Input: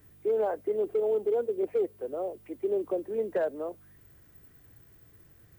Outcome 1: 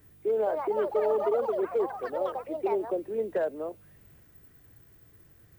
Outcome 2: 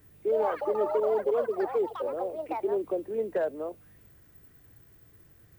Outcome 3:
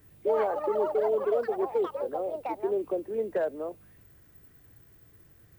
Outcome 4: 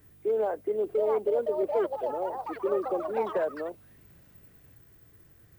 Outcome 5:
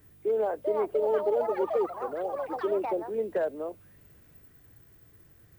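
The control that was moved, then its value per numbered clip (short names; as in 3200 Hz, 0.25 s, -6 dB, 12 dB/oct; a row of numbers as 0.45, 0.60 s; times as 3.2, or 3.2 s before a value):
echoes that change speed, time: 289, 138, 82, 794, 467 ms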